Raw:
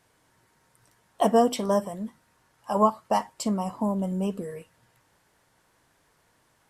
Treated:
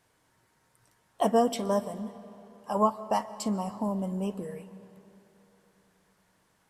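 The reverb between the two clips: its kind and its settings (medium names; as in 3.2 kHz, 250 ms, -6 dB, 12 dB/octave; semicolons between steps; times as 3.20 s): algorithmic reverb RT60 3.3 s, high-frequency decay 0.7×, pre-delay 95 ms, DRR 15.5 dB; trim -3.5 dB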